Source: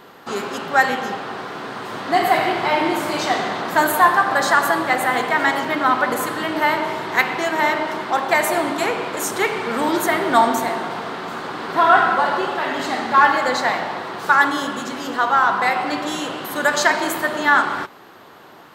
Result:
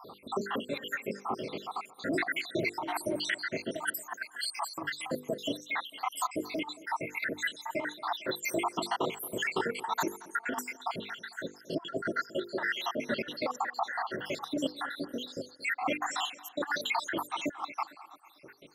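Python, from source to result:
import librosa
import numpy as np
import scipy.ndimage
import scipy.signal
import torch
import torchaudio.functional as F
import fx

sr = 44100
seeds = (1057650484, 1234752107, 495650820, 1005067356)

p1 = fx.spec_dropout(x, sr, seeds[0], share_pct=85)
p2 = fx.hum_notches(p1, sr, base_hz=50, count=10)
p3 = fx.over_compress(p2, sr, threshold_db=-27.0, ratio=-0.5)
p4 = p3 + fx.echo_tape(p3, sr, ms=225, feedback_pct=53, wet_db=-17.5, lp_hz=2700.0, drive_db=8.0, wow_cents=20, dry=0)
y = p4 * 10.0 ** (-4.0 / 20.0)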